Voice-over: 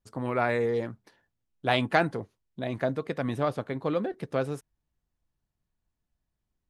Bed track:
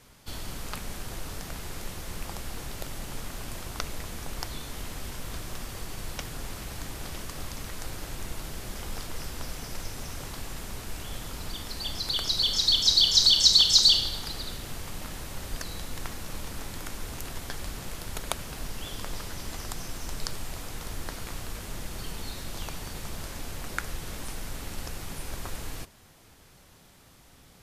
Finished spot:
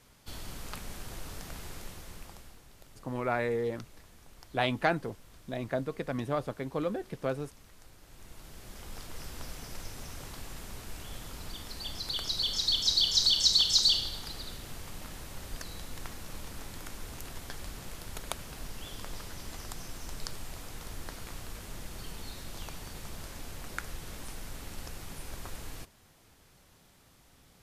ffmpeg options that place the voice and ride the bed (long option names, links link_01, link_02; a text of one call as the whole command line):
ffmpeg -i stem1.wav -i stem2.wav -filter_complex "[0:a]adelay=2900,volume=-4dB[link_01];[1:a]volume=8dB,afade=type=out:start_time=1.65:duration=0.96:silence=0.211349,afade=type=in:start_time=8.03:duration=1.32:silence=0.223872[link_02];[link_01][link_02]amix=inputs=2:normalize=0" out.wav